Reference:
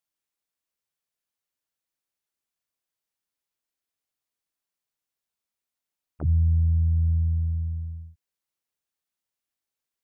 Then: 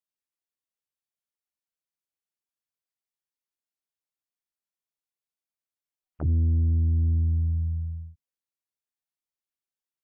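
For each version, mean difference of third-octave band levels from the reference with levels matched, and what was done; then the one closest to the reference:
2.0 dB: noise reduction from a noise print of the clip's start 11 dB
in parallel at −9 dB: sine wavefolder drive 6 dB, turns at −15 dBFS
on the sum: level −4.5 dB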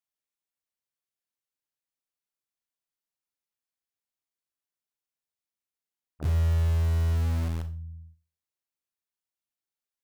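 13.0 dB: in parallel at −6 dB: bit reduction 4 bits
on the sum: four-comb reverb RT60 0.34 s, combs from 29 ms, DRR 9 dB
level −7 dB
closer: first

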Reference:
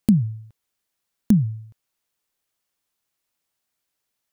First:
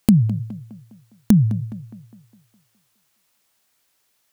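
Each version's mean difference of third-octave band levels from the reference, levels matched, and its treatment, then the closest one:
3.5 dB: low-shelf EQ 460 Hz −4 dB
in parallel at −0.5 dB: brickwall limiter −20 dBFS, peak gain reduction 11 dB
on the sum: downward compressor 1.5 to 1, threshold −23 dBFS, peak gain reduction 4 dB
tape delay 206 ms, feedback 54%, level −12 dB, low-pass 2,400 Hz
level +6.5 dB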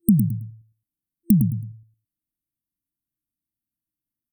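5.5 dB: adaptive Wiener filter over 9 samples
high-shelf EQ 4,400 Hz +11.5 dB
on a send: repeating echo 108 ms, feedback 23%, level −7.5 dB
on the sum: brick-wall band-stop 340–8,500 Hz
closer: first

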